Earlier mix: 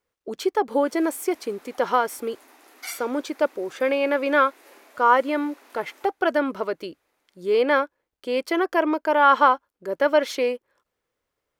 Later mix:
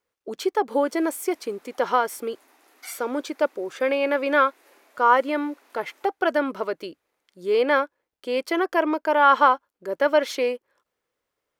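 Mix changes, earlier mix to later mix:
background -5.5 dB; master: add low shelf 130 Hz -8 dB

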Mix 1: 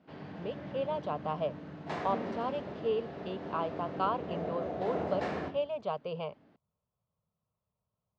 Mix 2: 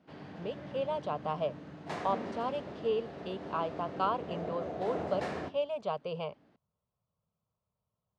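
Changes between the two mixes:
background: send -9.0 dB; master: remove air absorption 83 m

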